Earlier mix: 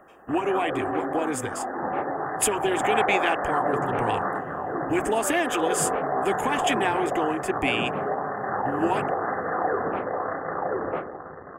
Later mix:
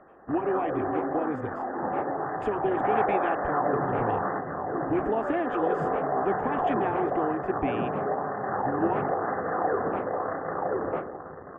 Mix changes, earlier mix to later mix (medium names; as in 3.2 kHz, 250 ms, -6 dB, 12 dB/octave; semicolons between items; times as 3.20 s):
speech: add tape spacing loss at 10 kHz 41 dB; master: add treble shelf 2.1 kHz -10.5 dB